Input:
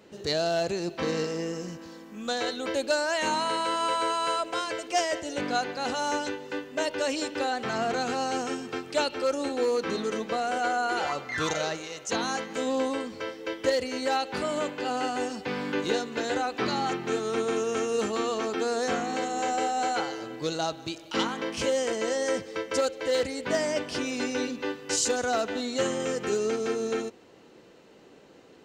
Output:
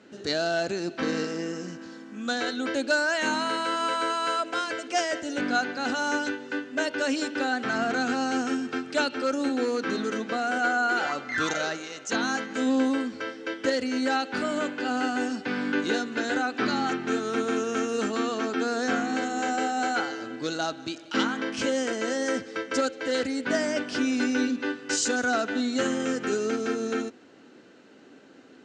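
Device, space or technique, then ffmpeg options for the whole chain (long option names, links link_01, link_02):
car door speaker: -filter_complex "[0:a]asettb=1/sr,asplit=3[link_01][link_02][link_03];[link_01]atrim=end=18.194[link_04];[link_02]atrim=start=18.19:end=18.96,asetpts=PTS-STARTPTS,afade=type=in:duration=0.004:curve=qsin,afade=type=out:start_time=0.766:duration=0.004:curve=qsin,lowpass=8700[link_05];[link_03]atrim=start=18.956[link_06];[link_04][link_05]acrossfade=duration=0.004:curve1=hsin:curve2=qsin[link_07];[link_07][link_06]acrossfade=duration=0.004:curve1=qsin:curve2=hsin,highpass=110,equalizer=frequency=150:width_type=q:width=4:gain=-4,equalizer=frequency=260:width_type=q:width=4:gain=9,equalizer=frequency=490:width_type=q:width=4:gain=-3,equalizer=frequency=980:width_type=q:width=4:gain=-4,equalizer=frequency=1500:width_type=q:width=4:gain=8,lowpass=frequency=8300:width=0.5412,lowpass=frequency=8300:width=1.3066"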